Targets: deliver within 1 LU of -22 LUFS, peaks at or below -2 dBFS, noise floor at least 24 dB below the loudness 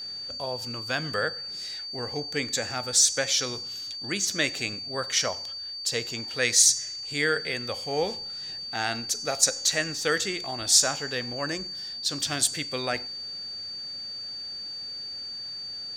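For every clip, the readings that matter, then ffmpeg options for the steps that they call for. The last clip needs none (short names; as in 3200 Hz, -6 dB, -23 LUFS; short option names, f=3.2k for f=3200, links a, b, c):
steady tone 4600 Hz; tone level -34 dBFS; loudness -26.5 LUFS; peak -5.0 dBFS; loudness target -22.0 LUFS
-> -af "bandreject=f=4.6k:w=30"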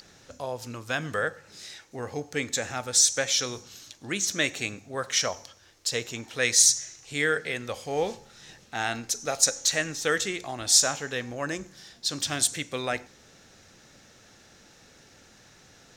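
steady tone none; loudness -26.0 LUFS; peak -5.0 dBFS; loudness target -22.0 LUFS
-> -af "volume=4dB,alimiter=limit=-2dB:level=0:latency=1"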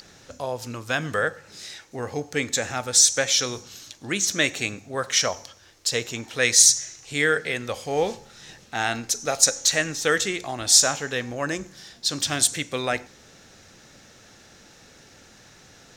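loudness -22.0 LUFS; peak -2.0 dBFS; noise floor -52 dBFS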